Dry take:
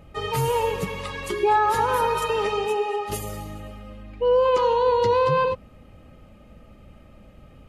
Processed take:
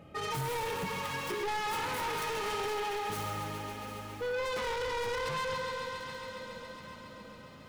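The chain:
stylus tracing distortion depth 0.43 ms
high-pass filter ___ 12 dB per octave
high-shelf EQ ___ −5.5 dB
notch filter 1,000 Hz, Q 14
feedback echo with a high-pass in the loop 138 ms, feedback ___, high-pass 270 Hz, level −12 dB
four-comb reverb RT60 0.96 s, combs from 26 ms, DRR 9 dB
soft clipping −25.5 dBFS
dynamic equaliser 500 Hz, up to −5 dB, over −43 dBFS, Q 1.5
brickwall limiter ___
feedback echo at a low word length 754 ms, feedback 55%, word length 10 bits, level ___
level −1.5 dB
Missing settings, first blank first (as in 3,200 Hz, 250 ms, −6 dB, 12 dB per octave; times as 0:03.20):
130 Hz, 5,300 Hz, 84%, −27.5 dBFS, −14 dB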